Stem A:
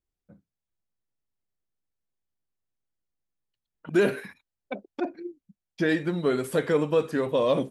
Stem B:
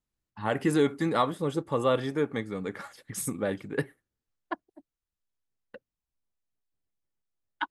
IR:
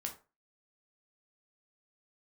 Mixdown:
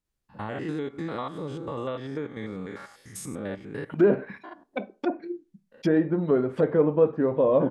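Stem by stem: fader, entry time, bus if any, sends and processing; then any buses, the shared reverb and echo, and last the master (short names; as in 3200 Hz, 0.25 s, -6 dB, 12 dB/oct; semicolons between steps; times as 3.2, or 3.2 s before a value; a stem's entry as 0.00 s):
0.0 dB, 0.05 s, send -6 dB, dry
-1.0 dB, 0.00 s, send -10 dB, stepped spectrum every 0.1 s; compressor, threshold -29 dBFS, peak gain reduction 8.5 dB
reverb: on, RT60 0.30 s, pre-delay 7 ms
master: treble ducked by the level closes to 950 Hz, closed at -20.5 dBFS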